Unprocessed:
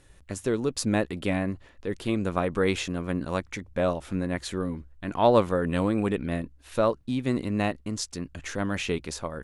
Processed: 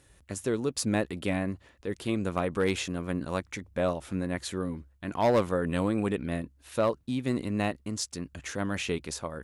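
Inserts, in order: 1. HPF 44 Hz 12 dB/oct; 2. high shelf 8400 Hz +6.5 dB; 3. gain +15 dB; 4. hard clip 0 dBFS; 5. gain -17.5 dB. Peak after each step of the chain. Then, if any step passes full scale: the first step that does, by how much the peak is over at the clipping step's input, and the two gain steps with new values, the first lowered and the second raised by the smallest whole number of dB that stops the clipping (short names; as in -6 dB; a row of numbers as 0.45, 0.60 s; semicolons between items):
-7.5, -7.0, +8.0, 0.0, -17.5 dBFS; step 3, 8.0 dB; step 3 +7 dB, step 5 -9.5 dB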